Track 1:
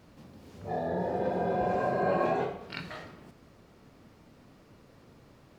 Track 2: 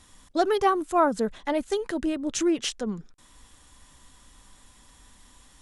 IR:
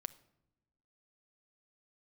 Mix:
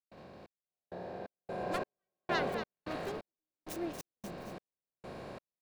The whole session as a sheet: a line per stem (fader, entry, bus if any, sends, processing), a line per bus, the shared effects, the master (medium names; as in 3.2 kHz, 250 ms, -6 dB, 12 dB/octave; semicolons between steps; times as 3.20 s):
1.23 s -17.5 dB -> 1.98 s -9 dB, 0.00 s, no send, no echo send, spectral levelling over time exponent 0.4
-15.0 dB, 1.35 s, no send, echo send -9 dB, self-modulated delay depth 0.66 ms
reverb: none
echo: feedback delay 234 ms, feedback 44%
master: trance gate ".xxx....xxx." 131 bpm -60 dB